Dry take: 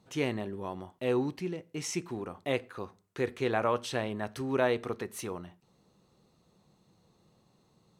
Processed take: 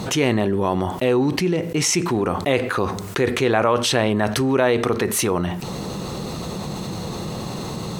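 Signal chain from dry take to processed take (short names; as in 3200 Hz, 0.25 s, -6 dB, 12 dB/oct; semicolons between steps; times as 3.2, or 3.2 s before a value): fast leveller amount 70%; gain +8 dB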